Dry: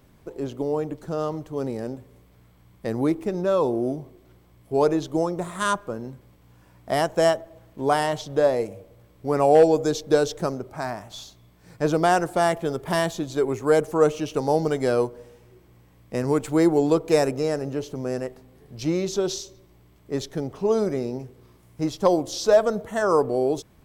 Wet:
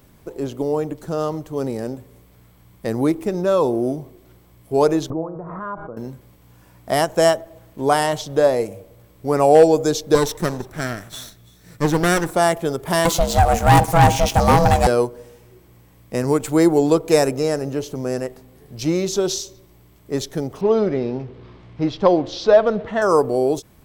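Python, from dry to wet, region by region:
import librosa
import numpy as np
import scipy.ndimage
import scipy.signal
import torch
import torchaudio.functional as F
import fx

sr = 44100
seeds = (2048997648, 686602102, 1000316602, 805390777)

y = fx.chain(x, sr, fx.lowpass(hz=1300.0, slope=24),
    fx.comb_fb(f0_hz=160.0, decay_s=0.73, harmonics='all', damping=0.0, mix_pct=70),
    fx.pre_swell(db_per_s=23.0), at=(5.1, 5.97))
y = fx.chain(y, sr, fx.lower_of_two(delay_ms=0.52),
    fx.echo_single(ms=334, db=-21.5), at=(10.15, 12.35))
y = fx.chain(y, sr, fx.leveller(passes=3),
    fx.ring_mod(carrier_hz=340.0), at=(13.05, 14.87))
y = fx.chain(y, sr, fx.law_mismatch(coded='mu'),
    fx.lowpass(hz=4000.0, slope=24), at=(20.61, 23.02))
y = fx.high_shelf(y, sr, hz=7700.0, db=8.0)
y = fx.end_taper(y, sr, db_per_s=410.0)
y = F.gain(torch.from_numpy(y), 4.0).numpy()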